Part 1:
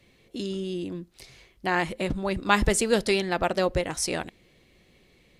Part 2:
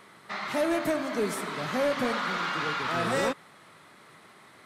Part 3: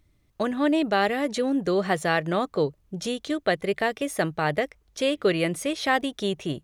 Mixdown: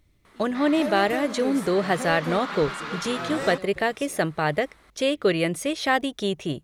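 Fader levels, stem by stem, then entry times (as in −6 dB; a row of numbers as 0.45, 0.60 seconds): −18.5, −3.5, +1.0 decibels; 0.00, 0.25, 0.00 seconds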